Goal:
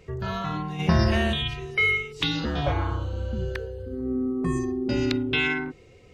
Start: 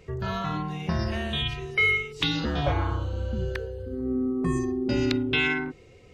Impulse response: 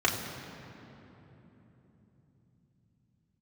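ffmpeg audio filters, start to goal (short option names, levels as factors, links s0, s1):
-filter_complex "[0:a]asplit=3[s0][s1][s2];[s0]afade=t=out:st=0.78:d=0.02[s3];[s1]acontrast=88,afade=t=in:st=0.78:d=0.02,afade=t=out:st=1.32:d=0.02[s4];[s2]afade=t=in:st=1.32:d=0.02[s5];[s3][s4][s5]amix=inputs=3:normalize=0"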